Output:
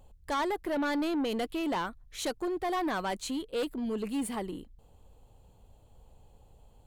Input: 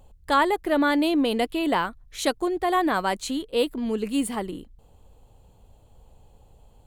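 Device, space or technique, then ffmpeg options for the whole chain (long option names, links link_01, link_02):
saturation between pre-emphasis and de-emphasis: -af "highshelf=frequency=11000:gain=10.5,asoftclip=type=tanh:threshold=-22.5dB,highshelf=frequency=11000:gain=-10.5,volume=-4dB"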